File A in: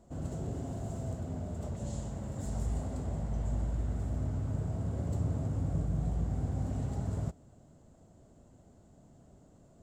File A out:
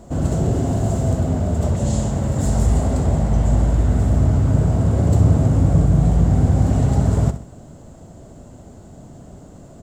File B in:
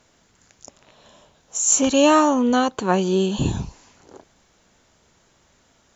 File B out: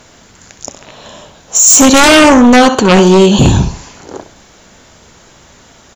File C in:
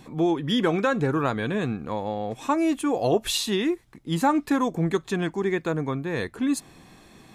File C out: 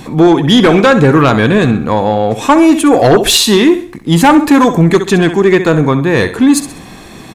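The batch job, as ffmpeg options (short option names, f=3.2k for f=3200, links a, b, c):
-af "aecho=1:1:65|130|195|260:0.251|0.0929|0.0344|0.0127,aeval=exprs='0.596*sin(PI/2*3.55*val(0)/0.596)':c=same,volume=3dB"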